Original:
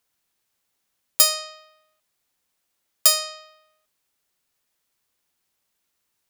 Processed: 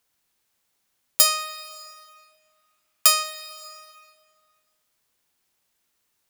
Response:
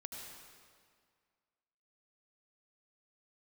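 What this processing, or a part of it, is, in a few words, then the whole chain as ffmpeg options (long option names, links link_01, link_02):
compressed reverb return: -filter_complex "[0:a]asplit=3[link_01][link_02][link_03];[link_01]afade=type=out:start_time=1.24:duration=0.02[link_04];[link_02]equalizer=frequency=500:width_type=o:width=0.33:gain=-10,equalizer=frequency=1250:width_type=o:width=0.33:gain=7,equalizer=frequency=2500:width_type=o:width=0.33:gain=7,afade=type=in:start_time=1.24:duration=0.02,afade=type=out:start_time=3.22:duration=0.02[link_05];[link_03]afade=type=in:start_time=3.22:duration=0.02[link_06];[link_04][link_05][link_06]amix=inputs=3:normalize=0,asplit=2[link_07][link_08];[1:a]atrim=start_sample=2205[link_09];[link_08][link_09]afir=irnorm=-1:irlink=0,acompressor=threshold=-33dB:ratio=10,volume=-0.5dB[link_10];[link_07][link_10]amix=inputs=2:normalize=0,volume=-1.5dB"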